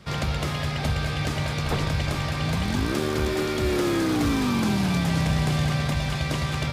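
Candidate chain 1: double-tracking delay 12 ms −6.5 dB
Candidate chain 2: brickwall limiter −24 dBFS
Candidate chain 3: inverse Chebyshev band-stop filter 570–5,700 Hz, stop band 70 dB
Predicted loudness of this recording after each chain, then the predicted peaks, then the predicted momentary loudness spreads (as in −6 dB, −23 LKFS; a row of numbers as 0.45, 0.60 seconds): −24.0, −32.0, −31.5 LKFS; −11.0, −24.0, −18.0 dBFS; 4, 1, 5 LU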